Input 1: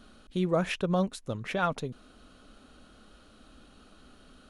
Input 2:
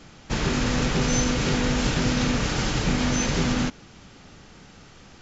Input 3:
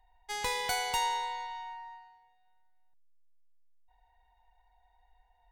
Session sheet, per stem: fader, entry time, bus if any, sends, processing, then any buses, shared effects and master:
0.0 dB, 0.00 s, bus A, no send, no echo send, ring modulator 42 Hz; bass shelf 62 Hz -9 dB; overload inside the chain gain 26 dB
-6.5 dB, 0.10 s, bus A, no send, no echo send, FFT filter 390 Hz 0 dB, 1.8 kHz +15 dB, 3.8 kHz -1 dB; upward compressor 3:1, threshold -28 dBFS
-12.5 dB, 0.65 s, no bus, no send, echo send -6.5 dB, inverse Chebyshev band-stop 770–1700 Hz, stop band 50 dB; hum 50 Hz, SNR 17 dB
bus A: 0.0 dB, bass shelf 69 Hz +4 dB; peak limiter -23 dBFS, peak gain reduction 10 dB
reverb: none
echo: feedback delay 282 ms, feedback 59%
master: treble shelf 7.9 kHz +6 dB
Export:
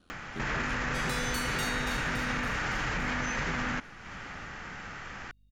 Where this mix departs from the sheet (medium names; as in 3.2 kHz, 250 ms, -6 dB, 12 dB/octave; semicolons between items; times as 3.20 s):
stem 1 0.0 dB -> -6.0 dB; stem 3 -12.5 dB -> -2.5 dB; master: missing treble shelf 7.9 kHz +6 dB